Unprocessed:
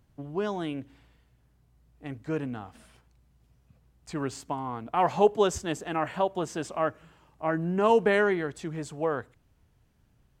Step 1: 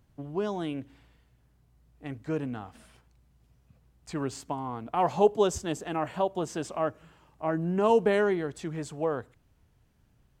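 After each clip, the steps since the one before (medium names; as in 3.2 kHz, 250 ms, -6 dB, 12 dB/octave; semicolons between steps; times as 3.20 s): dynamic bell 1.8 kHz, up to -6 dB, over -41 dBFS, Q 0.99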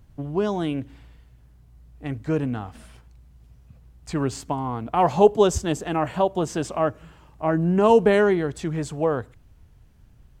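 bass shelf 95 Hz +11 dB; trim +6 dB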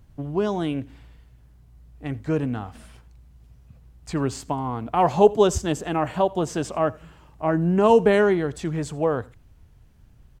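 delay 84 ms -23.5 dB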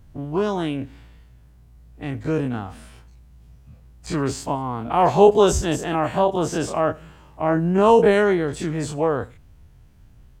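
every event in the spectrogram widened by 60 ms; trim -1 dB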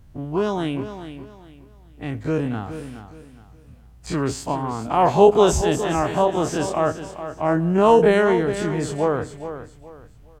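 feedback delay 418 ms, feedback 29%, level -11 dB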